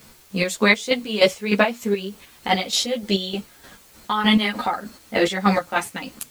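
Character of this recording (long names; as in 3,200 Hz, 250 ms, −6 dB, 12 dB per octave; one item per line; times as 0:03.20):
chopped level 3.3 Hz, depth 65%, duty 40%
a quantiser's noise floor 10 bits, dither triangular
a shimmering, thickened sound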